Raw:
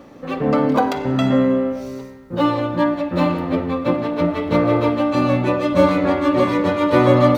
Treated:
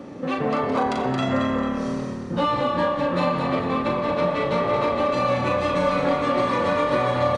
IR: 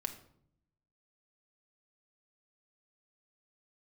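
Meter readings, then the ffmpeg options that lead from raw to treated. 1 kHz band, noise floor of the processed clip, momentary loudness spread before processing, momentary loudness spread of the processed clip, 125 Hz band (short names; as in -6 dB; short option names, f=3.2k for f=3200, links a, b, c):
-1.0 dB, -31 dBFS, 6 LU, 4 LU, -7.0 dB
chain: -filter_complex "[0:a]highpass=110,lowshelf=f=380:g=8,acrossover=split=650[a][b];[a]acompressor=threshold=-27dB:ratio=10[c];[b]alimiter=limit=-17.5dB:level=0:latency=1:release=230[d];[c][d]amix=inputs=2:normalize=0,asplit=2[e][f];[f]adelay=39,volume=-4.5dB[g];[e][g]amix=inputs=2:normalize=0,asplit=2[h][i];[i]asplit=5[j][k][l][m][n];[j]adelay=223,afreqshift=-37,volume=-6dB[o];[k]adelay=446,afreqshift=-74,volume=-12.9dB[p];[l]adelay=669,afreqshift=-111,volume=-19.9dB[q];[m]adelay=892,afreqshift=-148,volume=-26.8dB[r];[n]adelay=1115,afreqshift=-185,volume=-33.7dB[s];[o][p][q][r][s]amix=inputs=5:normalize=0[t];[h][t]amix=inputs=2:normalize=0,aresample=22050,aresample=44100"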